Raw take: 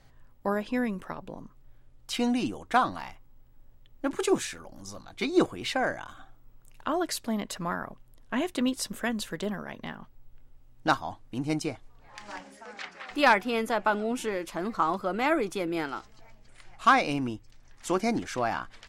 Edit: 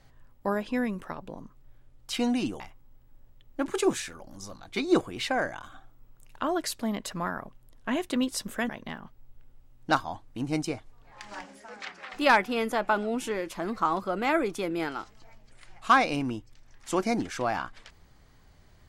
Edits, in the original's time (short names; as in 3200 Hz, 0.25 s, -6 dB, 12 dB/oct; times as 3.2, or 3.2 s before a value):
2.6–3.05 cut
9.14–9.66 cut